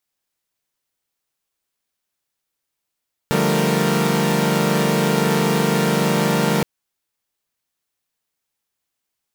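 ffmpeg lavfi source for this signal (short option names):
-f lavfi -i "aevalsrc='0.1*((2*mod(146.83*t,1)-1)+(2*mod(174.61*t,1)-1)+(2*mod(196*t,1)-1)+(2*mod(220*t,1)-1)+(2*mod(466.16*t,1)-1))':d=3.32:s=44100"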